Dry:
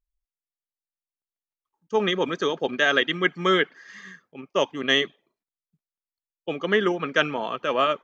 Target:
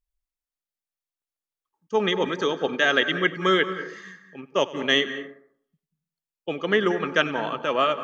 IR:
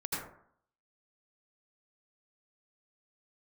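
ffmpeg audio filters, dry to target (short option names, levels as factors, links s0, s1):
-filter_complex "[0:a]asplit=2[s0][s1];[1:a]atrim=start_sample=2205,adelay=96[s2];[s1][s2]afir=irnorm=-1:irlink=0,volume=0.168[s3];[s0][s3]amix=inputs=2:normalize=0"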